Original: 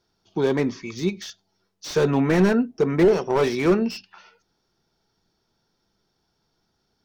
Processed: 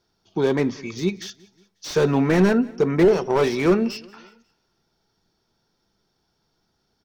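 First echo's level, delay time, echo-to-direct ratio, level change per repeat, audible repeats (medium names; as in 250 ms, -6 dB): -23.5 dB, 181 ms, -22.5 dB, -6.0 dB, 2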